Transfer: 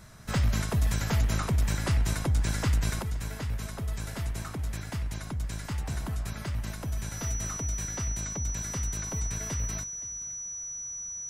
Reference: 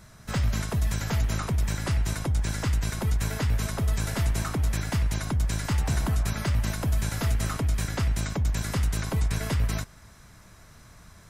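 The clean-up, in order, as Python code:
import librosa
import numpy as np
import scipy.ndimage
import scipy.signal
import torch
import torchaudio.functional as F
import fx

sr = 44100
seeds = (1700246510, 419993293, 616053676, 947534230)

y = fx.fix_declip(x, sr, threshold_db=-18.5)
y = fx.notch(y, sr, hz=5900.0, q=30.0)
y = fx.fix_echo_inverse(y, sr, delay_ms=519, level_db=-20.0)
y = fx.fix_level(y, sr, at_s=3.02, step_db=7.5)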